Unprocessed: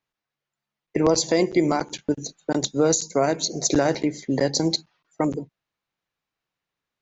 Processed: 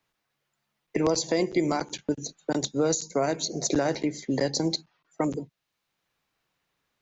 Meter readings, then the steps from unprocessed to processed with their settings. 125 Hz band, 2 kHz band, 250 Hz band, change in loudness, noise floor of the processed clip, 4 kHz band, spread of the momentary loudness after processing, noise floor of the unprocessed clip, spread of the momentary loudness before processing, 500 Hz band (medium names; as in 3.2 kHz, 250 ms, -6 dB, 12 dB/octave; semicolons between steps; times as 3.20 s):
-4.5 dB, -4.0 dB, -4.5 dB, -4.5 dB, -81 dBFS, -4.5 dB, 7 LU, under -85 dBFS, 8 LU, -4.5 dB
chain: three bands compressed up and down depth 40%; trim -4.5 dB